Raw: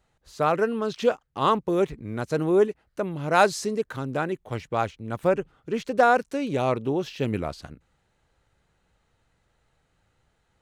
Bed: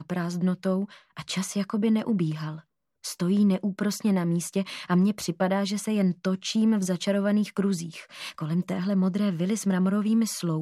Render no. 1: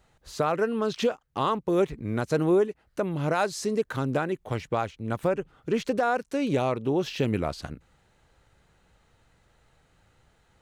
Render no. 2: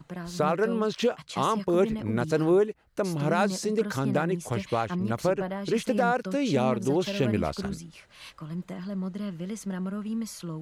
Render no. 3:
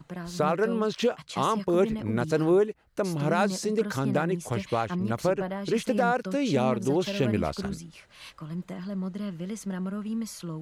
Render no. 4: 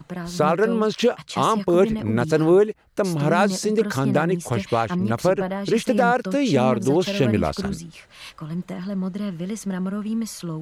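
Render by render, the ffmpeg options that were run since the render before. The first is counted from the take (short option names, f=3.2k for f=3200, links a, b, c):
-filter_complex "[0:a]asplit=2[a][b];[b]acompressor=threshold=-30dB:ratio=6,volume=-0.5dB[c];[a][c]amix=inputs=2:normalize=0,alimiter=limit=-15dB:level=0:latency=1:release=479"
-filter_complex "[1:a]volume=-8.5dB[a];[0:a][a]amix=inputs=2:normalize=0"
-af anull
-af "volume=6dB"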